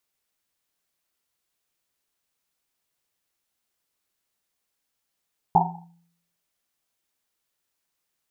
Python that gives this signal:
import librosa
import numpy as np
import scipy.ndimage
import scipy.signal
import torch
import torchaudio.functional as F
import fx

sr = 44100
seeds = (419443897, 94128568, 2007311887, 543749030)

y = fx.risset_drum(sr, seeds[0], length_s=1.1, hz=170.0, decay_s=0.71, noise_hz=830.0, noise_width_hz=180.0, noise_pct=75)